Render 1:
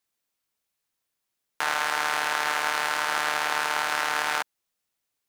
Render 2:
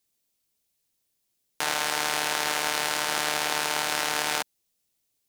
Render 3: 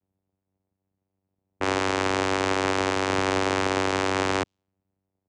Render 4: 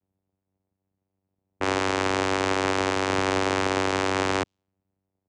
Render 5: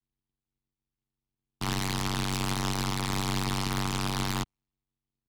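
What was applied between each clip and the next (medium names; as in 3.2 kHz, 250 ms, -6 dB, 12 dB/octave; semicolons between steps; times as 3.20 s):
peaking EQ 1.3 kHz -11.5 dB 2 oct; trim +6.5 dB
level-controlled noise filter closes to 930 Hz, open at -25.5 dBFS; comb 4.9 ms, depth 91%; vocoder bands 4, saw 95.5 Hz; trim +1.5 dB
no audible change
mistuned SSB -250 Hz 280–2600 Hz; comb 0.9 ms, depth 86%; delay time shaken by noise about 2.9 kHz, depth 0.14 ms; trim -7 dB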